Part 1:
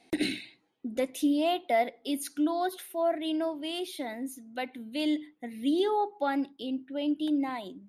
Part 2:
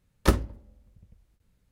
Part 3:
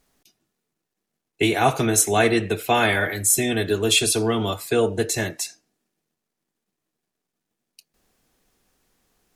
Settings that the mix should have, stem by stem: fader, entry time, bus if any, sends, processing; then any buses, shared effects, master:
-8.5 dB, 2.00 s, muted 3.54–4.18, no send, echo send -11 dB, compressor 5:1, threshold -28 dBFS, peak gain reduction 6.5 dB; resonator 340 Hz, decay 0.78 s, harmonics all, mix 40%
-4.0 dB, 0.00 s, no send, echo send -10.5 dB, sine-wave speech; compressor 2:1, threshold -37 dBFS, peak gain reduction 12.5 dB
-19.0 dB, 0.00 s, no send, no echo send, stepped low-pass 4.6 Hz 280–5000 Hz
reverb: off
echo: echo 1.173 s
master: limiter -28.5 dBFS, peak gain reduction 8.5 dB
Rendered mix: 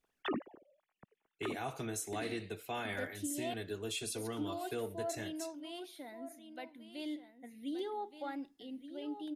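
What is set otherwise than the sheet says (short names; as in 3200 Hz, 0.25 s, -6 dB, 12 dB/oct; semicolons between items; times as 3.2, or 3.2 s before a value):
stem 1: missing compressor 5:1, threshold -28 dBFS, peak gain reduction 6.5 dB; stem 2: missing compressor 2:1, threshold -37 dBFS, peak gain reduction 12.5 dB; stem 3: missing stepped low-pass 4.6 Hz 280–5000 Hz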